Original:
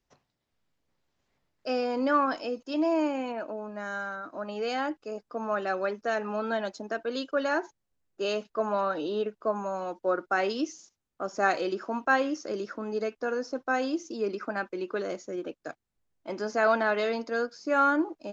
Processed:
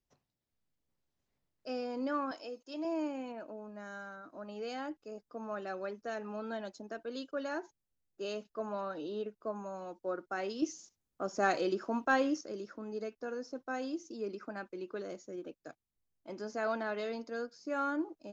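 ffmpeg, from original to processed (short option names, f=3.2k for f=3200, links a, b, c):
-filter_complex "[0:a]asettb=1/sr,asplit=3[a][b][c];[a]atrim=end=2.314[d];[b]atrim=start=2.31:end=2.85,asetpts=PTS-STARTPTS,afade=t=in:d=0.004:c=qsin,afade=t=out:st=0.536:d=0.004:c=qsin,bass=f=250:g=-14,treble=f=4k:g=2[e];[c]atrim=start=2.846[f];[d][e]acrossfade=d=0.004:c1=hsin:c2=qsin[g];[g][f]acrossfade=d=0.004:c1=qsin:c2=hsin,asettb=1/sr,asplit=3[h][i][j];[h]atrim=end=10.624[k];[i]atrim=start=10.62:end=12.41,asetpts=PTS-STARTPTS,afade=t=in:d=0.004:c=qsin,afade=t=out:st=1.786:d=0.004:c=qsin,acontrast=67[l];[j]atrim=start=12.406[m];[k][l]acrossfade=d=0.004:c1=hsin:c2=qsin[n];[n][m]acrossfade=d=0.004:c1=qsin:c2=hsin,equalizer=f=1.5k:w=0.32:g=-6,volume=-6dB"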